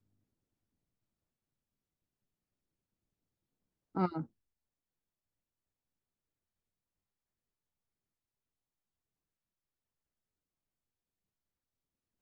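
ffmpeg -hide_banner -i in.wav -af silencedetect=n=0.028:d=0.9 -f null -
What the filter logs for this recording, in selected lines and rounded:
silence_start: 0.00
silence_end: 3.97 | silence_duration: 3.97
silence_start: 4.20
silence_end: 12.21 | silence_duration: 8.01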